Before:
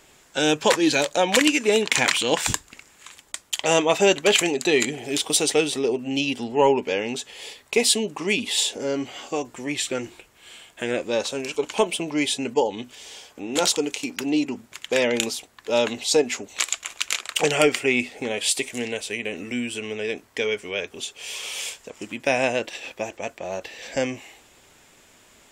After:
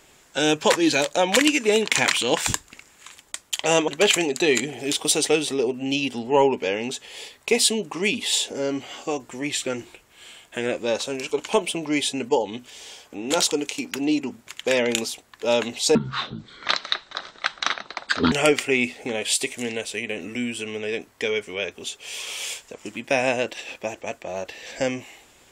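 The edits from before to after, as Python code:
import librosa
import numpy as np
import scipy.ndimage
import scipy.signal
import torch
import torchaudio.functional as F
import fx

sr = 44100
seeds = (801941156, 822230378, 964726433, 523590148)

y = fx.edit(x, sr, fx.cut(start_s=3.88, length_s=0.25),
    fx.speed_span(start_s=16.2, length_s=1.28, speed=0.54), tone=tone)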